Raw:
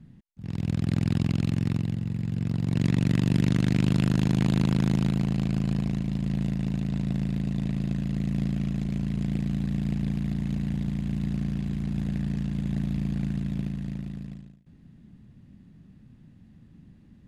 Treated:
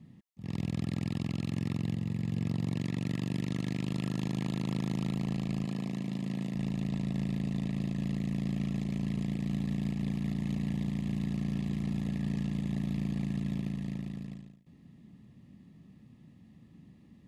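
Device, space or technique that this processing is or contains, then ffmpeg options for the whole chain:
PA system with an anti-feedback notch: -filter_complex "[0:a]highpass=f=170:p=1,asuperstop=centerf=1500:order=20:qfactor=5.4,alimiter=limit=0.0708:level=0:latency=1:release=113,asettb=1/sr,asplit=3[s0][s1][s2];[s0]atrim=end=5.654[s3];[s1]atrim=start=5.65:end=6.55,asetpts=PTS-STARTPTS,afade=t=in:d=0.004:c=qsin,afade=t=out:st=0.896:d=0.004:c=qsin,highpass=150[s4];[s2]atrim=start=6.546[s5];[s3][s4]acrossfade=d=0.004:c1=hsin:c2=qsin[s6];[s6][s5]acrossfade=d=0.004:c1=qsin:c2=hsin"

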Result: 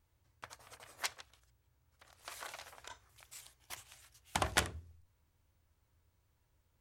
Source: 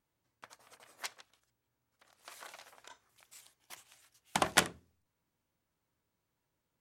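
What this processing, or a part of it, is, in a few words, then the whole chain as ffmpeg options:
car stereo with a boomy subwoofer: -af "lowshelf=f=120:t=q:w=1.5:g=12.5,alimiter=limit=0.0944:level=0:latency=1:release=323,volume=1.5"

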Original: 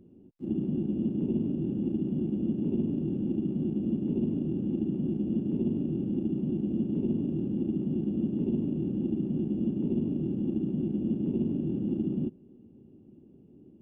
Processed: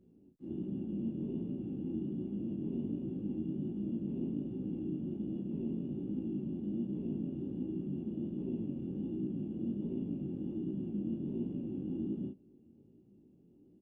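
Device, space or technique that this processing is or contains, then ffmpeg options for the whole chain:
double-tracked vocal: -filter_complex "[0:a]asplit=2[s0][s1];[s1]adelay=35,volume=0.631[s2];[s0][s2]amix=inputs=2:normalize=0,flanger=delay=15.5:depth=7.4:speed=1.3,volume=0.473"

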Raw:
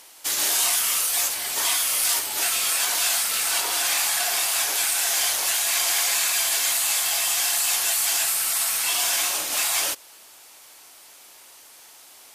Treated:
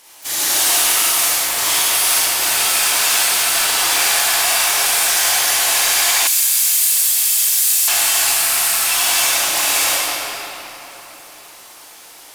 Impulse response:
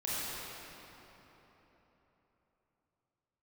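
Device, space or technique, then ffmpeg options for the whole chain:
shimmer-style reverb: -filter_complex "[0:a]asplit=2[s0][s1];[s1]asetrate=88200,aresample=44100,atempo=0.5,volume=0.251[s2];[s0][s2]amix=inputs=2:normalize=0[s3];[1:a]atrim=start_sample=2205[s4];[s3][s4]afir=irnorm=-1:irlink=0,asettb=1/sr,asplit=3[s5][s6][s7];[s5]atrim=end=6.274[s8];[s6]atrim=start=6.27:end=7.88,asetpts=PTS-STARTPTS,afade=t=in:d=0.004:c=qsin,afade=t=out:st=1.606:d=0.004:c=qsin,aderivative[s9];[s7]atrim=start=7.876[s10];[s8][s9]acrossfade=d=0.004:c1=hsin:c2=qsin[s11];[s11][s10]acrossfade=d=0.004:c1=qsin:c2=hsin,volume=1.41"

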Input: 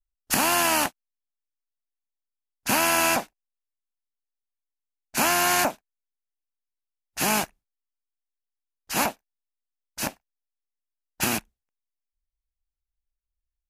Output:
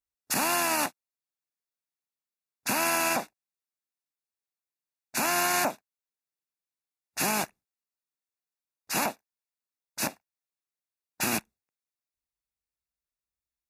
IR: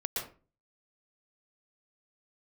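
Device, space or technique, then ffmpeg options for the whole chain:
PA system with an anti-feedback notch: -af "highpass=110,asuperstop=centerf=3100:order=4:qfactor=6.6,alimiter=limit=0.158:level=0:latency=1:release=50"

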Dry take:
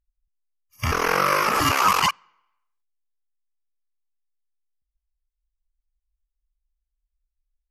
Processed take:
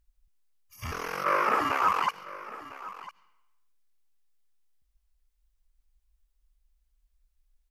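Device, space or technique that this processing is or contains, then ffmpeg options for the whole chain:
de-esser from a sidechain: -filter_complex "[0:a]asettb=1/sr,asplit=3[s0][s1][s2];[s0]atrim=end=1.244[s3];[s1]atrim=start=1.24:end=2.09,asetpts=PTS-STARTPTS,afade=t=in:d=0.004:c=qsin,afade=t=out:st=0.846:d=0.004:c=qsin,acrossover=split=230 2300:gain=0.178 1 0.178[s4][s5][s6];[s4][s5][s6]amix=inputs=3:normalize=0[s7];[s2]atrim=start=2.086[s8];[s3][s7]acrossfade=d=0.004:c1=hsin:c2=qsin[s9];[s9][s8]acrossfade=d=0.004:c1=qsin:c2=hsin,asplit=2[s10][s11];[s11]highpass=f=5000:w=0.5412,highpass=f=5000:w=1.3066,apad=whole_len=339965[s12];[s10][s12]sidechaincompress=threshold=0.00126:ratio=5:attack=1.5:release=42,aecho=1:1:1003:0.15,volume=2.66"

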